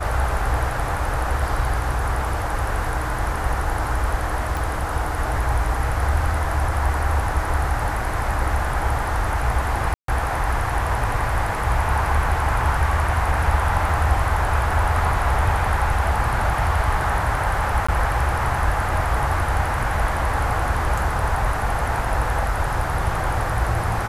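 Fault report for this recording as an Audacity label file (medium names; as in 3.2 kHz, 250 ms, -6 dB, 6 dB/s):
4.570000	4.570000	pop
9.940000	10.080000	dropout 143 ms
13.890000	13.890000	dropout 2.6 ms
17.870000	17.890000	dropout 15 ms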